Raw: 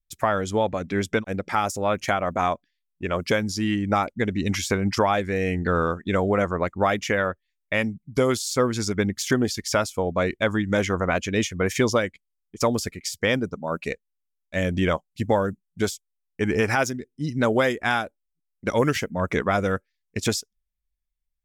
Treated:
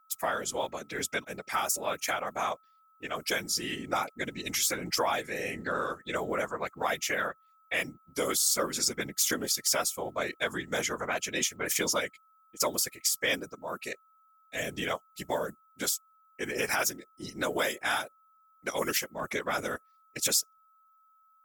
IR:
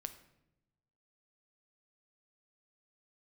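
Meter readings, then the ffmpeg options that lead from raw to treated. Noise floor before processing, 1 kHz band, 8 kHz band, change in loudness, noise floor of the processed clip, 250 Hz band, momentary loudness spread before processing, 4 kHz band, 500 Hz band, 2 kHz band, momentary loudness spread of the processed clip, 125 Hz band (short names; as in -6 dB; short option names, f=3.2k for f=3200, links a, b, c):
-79 dBFS, -7.5 dB, +4.0 dB, -6.0 dB, -65 dBFS, -14.0 dB, 7 LU, -0.5 dB, -10.0 dB, -5.0 dB, 11 LU, -18.5 dB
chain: -af "afftfilt=real='hypot(re,im)*cos(2*PI*random(0))':imag='hypot(re,im)*sin(2*PI*random(1))':win_size=512:overlap=0.75,aeval=exprs='val(0)+0.000891*sin(2*PI*1300*n/s)':c=same,aemphasis=mode=production:type=riaa,volume=-1.5dB"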